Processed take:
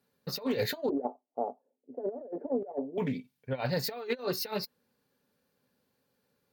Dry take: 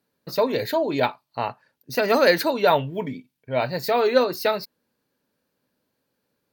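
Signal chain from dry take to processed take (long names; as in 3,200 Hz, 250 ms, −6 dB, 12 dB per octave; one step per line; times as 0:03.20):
0:00.89–0:02.98: elliptic band-pass filter 250–710 Hz, stop band 70 dB
compressor whose output falls as the input rises −26 dBFS, ratio −0.5
notch comb filter 320 Hz
highs frequency-modulated by the lows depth 0.12 ms
level −4.5 dB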